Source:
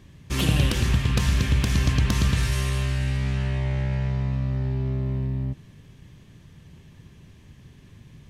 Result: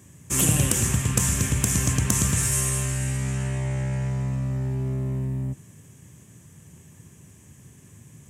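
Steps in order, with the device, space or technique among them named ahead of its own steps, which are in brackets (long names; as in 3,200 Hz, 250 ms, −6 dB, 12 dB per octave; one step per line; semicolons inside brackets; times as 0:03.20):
budget condenser microphone (high-pass filter 79 Hz 24 dB per octave; high shelf with overshoot 5,700 Hz +11 dB, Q 3)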